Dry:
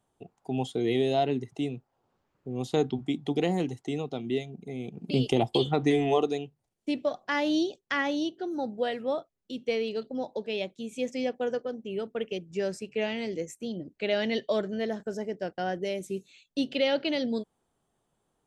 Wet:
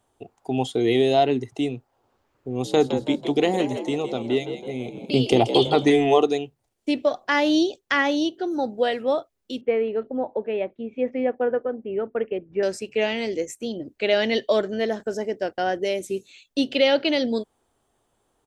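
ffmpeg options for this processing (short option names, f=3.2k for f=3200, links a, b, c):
-filter_complex "[0:a]asplit=3[a][b][c];[a]afade=t=out:st=2.63:d=0.02[d];[b]asplit=6[e][f][g][h][i][j];[f]adelay=164,afreqshift=66,volume=-10dB[k];[g]adelay=328,afreqshift=132,volume=-16.7dB[l];[h]adelay=492,afreqshift=198,volume=-23.5dB[m];[i]adelay=656,afreqshift=264,volume=-30.2dB[n];[j]adelay=820,afreqshift=330,volume=-37dB[o];[e][k][l][m][n][o]amix=inputs=6:normalize=0,afade=t=in:st=2.63:d=0.02,afade=t=out:st=5.88:d=0.02[p];[c]afade=t=in:st=5.88:d=0.02[q];[d][p][q]amix=inputs=3:normalize=0,asettb=1/sr,asplit=3[r][s][t];[r]atrim=end=9.614[u];[s]atrim=start=9.61:end=12.63,asetpts=PTS-STARTPTS,afade=t=in:d=0.004:c=qsin,afade=t=out:st=3.016:d=0.004:c=qsin,lowpass=f=2k:w=0.5412,lowpass=f=2k:w=1.3066[v];[t]atrim=start=12.626[w];[u][v]acrossfade=d=0.004:c1=hsin:c2=qsin[x];[x][w]acrossfade=d=0.004:c1=qsin:c2=hsin,equalizer=f=170:t=o:w=0.53:g=-11.5,volume=7.5dB"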